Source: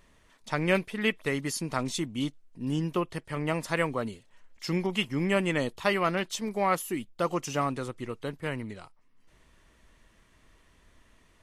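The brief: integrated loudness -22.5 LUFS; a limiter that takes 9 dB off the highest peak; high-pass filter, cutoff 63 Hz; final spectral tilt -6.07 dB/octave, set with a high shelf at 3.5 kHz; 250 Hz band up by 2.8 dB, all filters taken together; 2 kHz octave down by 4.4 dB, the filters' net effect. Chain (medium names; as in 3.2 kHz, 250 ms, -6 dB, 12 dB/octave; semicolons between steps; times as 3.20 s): high-pass 63 Hz; peaking EQ 250 Hz +4 dB; peaking EQ 2 kHz -3 dB; treble shelf 3.5 kHz -8 dB; trim +10.5 dB; peak limiter -11.5 dBFS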